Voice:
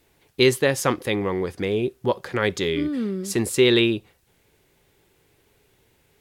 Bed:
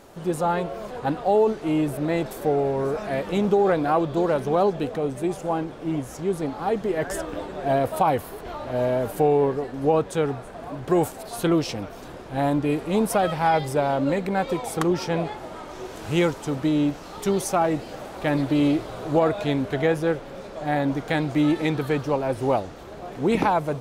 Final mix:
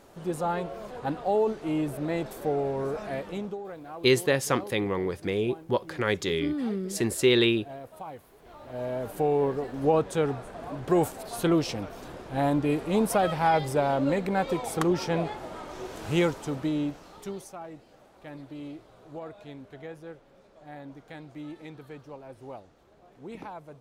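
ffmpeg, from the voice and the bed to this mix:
ffmpeg -i stem1.wav -i stem2.wav -filter_complex "[0:a]adelay=3650,volume=-4dB[link_01];[1:a]volume=12dB,afade=type=out:start_time=3.06:duration=0.55:silence=0.188365,afade=type=in:start_time=8.35:duration=1.44:silence=0.133352,afade=type=out:start_time=16.12:duration=1.41:silence=0.133352[link_02];[link_01][link_02]amix=inputs=2:normalize=0" out.wav

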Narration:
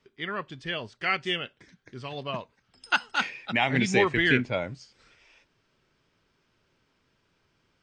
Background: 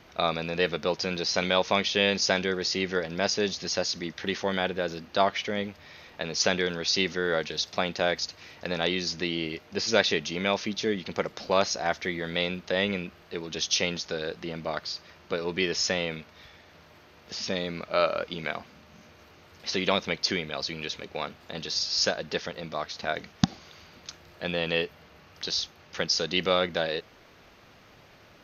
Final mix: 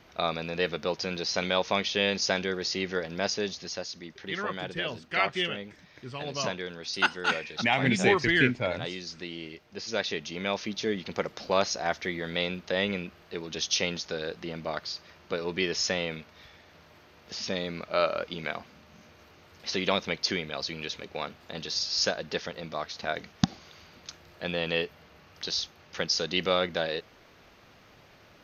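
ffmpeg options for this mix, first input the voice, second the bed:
ffmpeg -i stem1.wav -i stem2.wav -filter_complex "[0:a]adelay=4100,volume=-0.5dB[link_01];[1:a]volume=5dB,afade=type=out:start_time=3.26:duration=0.62:silence=0.473151,afade=type=in:start_time=9.82:duration=1.13:silence=0.421697[link_02];[link_01][link_02]amix=inputs=2:normalize=0" out.wav

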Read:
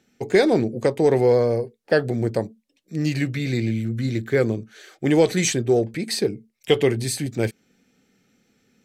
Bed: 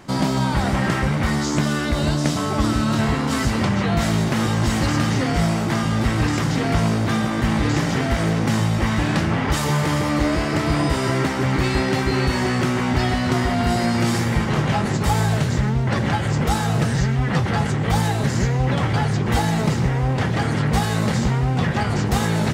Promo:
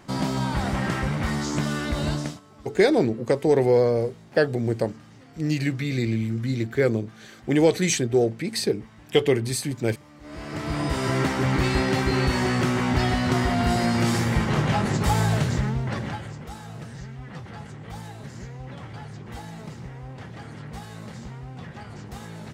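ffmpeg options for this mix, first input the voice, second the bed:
ffmpeg -i stem1.wav -i stem2.wav -filter_complex "[0:a]adelay=2450,volume=-1.5dB[link_01];[1:a]volume=21dB,afade=type=out:start_time=2.14:duration=0.26:silence=0.0668344,afade=type=in:start_time=10.21:duration=1.02:silence=0.0473151,afade=type=out:start_time=15.37:duration=1.01:silence=0.158489[link_02];[link_01][link_02]amix=inputs=2:normalize=0" out.wav

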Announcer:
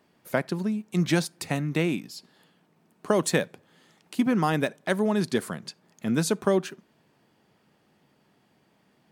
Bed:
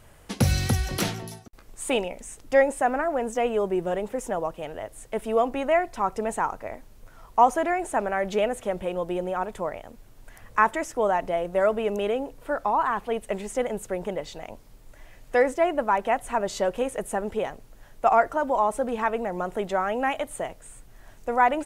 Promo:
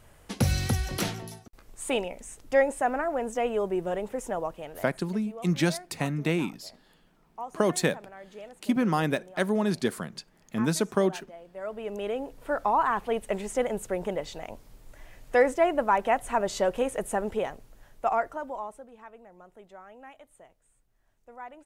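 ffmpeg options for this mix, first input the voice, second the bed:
ffmpeg -i stem1.wav -i stem2.wav -filter_complex "[0:a]adelay=4500,volume=-1.5dB[link_01];[1:a]volume=16.5dB,afade=type=out:start_time=4.44:duration=0.75:silence=0.141254,afade=type=in:start_time=11.53:duration=1.08:silence=0.105925,afade=type=out:start_time=17.22:duration=1.65:silence=0.0794328[link_02];[link_01][link_02]amix=inputs=2:normalize=0" out.wav

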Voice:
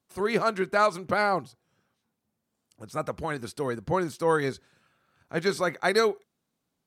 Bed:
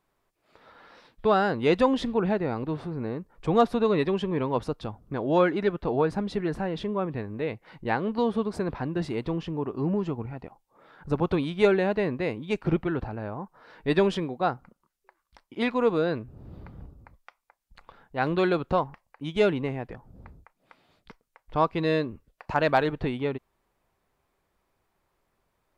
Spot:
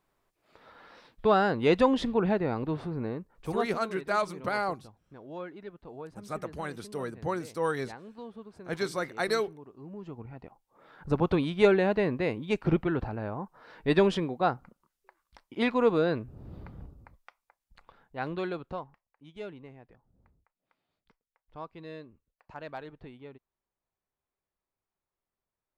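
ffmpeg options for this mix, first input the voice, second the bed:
ffmpeg -i stem1.wav -i stem2.wav -filter_complex "[0:a]adelay=3350,volume=-5.5dB[link_01];[1:a]volume=17dB,afade=type=out:start_time=2.98:duration=0.8:silence=0.133352,afade=type=in:start_time=9.9:duration=1.14:silence=0.125893,afade=type=out:start_time=16.58:duration=2.51:silence=0.125893[link_02];[link_01][link_02]amix=inputs=2:normalize=0" out.wav

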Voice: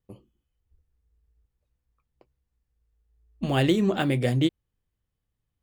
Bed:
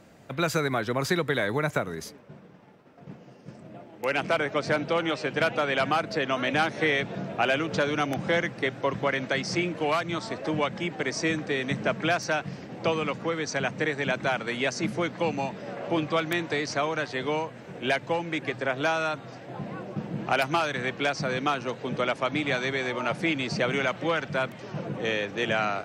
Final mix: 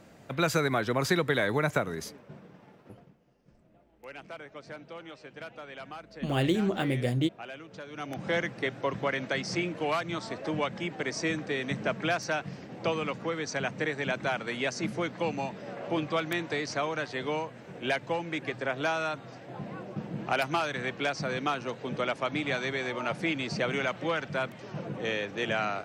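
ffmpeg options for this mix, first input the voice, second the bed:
ffmpeg -i stem1.wav -i stem2.wav -filter_complex "[0:a]adelay=2800,volume=-4.5dB[link_01];[1:a]volume=14dB,afade=type=out:start_time=2.87:duration=0.24:silence=0.133352,afade=type=in:start_time=7.89:duration=0.48:silence=0.188365[link_02];[link_01][link_02]amix=inputs=2:normalize=0" out.wav

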